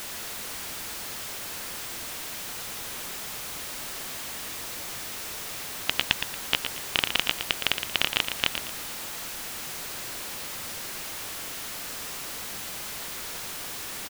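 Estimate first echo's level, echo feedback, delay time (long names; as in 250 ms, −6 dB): −8.0 dB, 30%, 115 ms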